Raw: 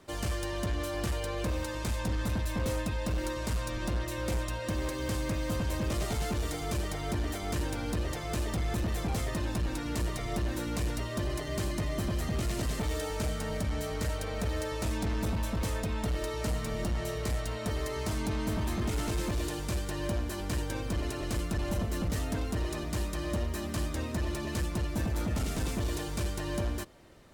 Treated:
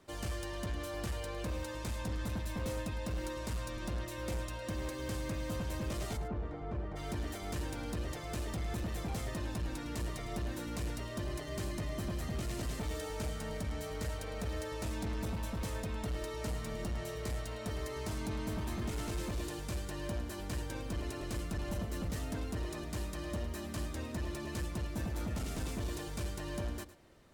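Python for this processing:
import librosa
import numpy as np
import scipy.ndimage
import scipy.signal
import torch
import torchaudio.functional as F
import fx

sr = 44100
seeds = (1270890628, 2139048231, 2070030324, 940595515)

y = fx.lowpass(x, sr, hz=1300.0, slope=12, at=(6.16, 6.95), fade=0.02)
y = y + 10.0 ** (-15.0 / 20.0) * np.pad(y, (int(107 * sr / 1000.0), 0))[:len(y)]
y = F.gain(torch.from_numpy(y), -6.0).numpy()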